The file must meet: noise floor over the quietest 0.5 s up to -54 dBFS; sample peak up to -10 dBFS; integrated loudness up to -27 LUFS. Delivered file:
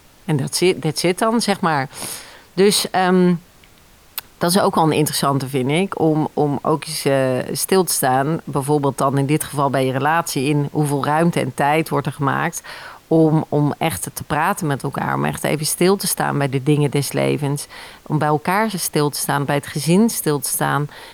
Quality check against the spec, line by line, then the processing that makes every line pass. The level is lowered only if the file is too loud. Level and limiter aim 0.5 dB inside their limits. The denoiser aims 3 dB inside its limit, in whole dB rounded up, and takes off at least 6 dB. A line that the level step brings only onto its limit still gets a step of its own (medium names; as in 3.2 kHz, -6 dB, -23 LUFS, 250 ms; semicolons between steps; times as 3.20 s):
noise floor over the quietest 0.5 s -49 dBFS: fail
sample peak -5.0 dBFS: fail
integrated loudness -18.5 LUFS: fail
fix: trim -9 dB